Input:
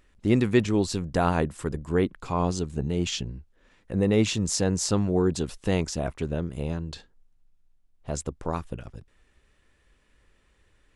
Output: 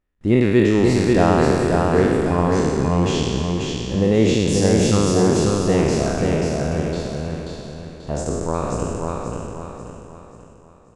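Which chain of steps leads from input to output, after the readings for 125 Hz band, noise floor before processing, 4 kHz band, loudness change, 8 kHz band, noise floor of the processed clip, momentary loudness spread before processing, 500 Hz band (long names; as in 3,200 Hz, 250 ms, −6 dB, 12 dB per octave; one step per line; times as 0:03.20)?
+8.0 dB, −64 dBFS, +5.5 dB, +8.0 dB, +4.5 dB, −47 dBFS, 13 LU, +10.0 dB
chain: peak hold with a decay on every bin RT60 2.06 s
high-shelf EQ 2,100 Hz −9 dB
noise gate with hold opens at −48 dBFS
on a send: repeating echo 536 ms, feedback 40%, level −3 dB
on the sum: level +4 dB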